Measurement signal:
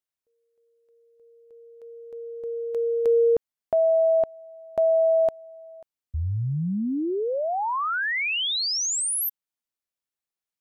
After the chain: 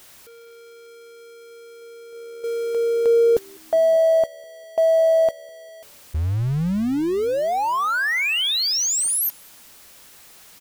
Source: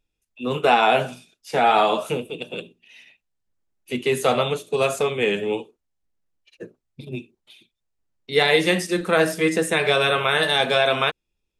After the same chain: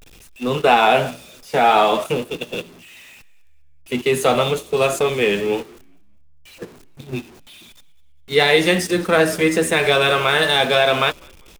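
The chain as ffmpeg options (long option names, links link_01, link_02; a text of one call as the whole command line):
ffmpeg -i in.wav -filter_complex "[0:a]aeval=exprs='val(0)+0.5*0.0266*sgn(val(0))':channel_layout=same,asplit=4[link_01][link_02][link_03][link_04];[link_02]adelay=200,afreqshift=-74,volume=-20.5dB[link_05];[link_03]adelay=400,afreqshift=-148,volume=-28.9dB[link_06];[link_04]adelay=600,afreqshift=-222,volume=-37.3dB[link_07];[link_01][link_05][link_06][link_07]amix=inputs=4:normalize=0,agate=range=-10dB:threshold=-32dB:ratio=16:release=45:detection=peak,volume=2.5dB" out.wav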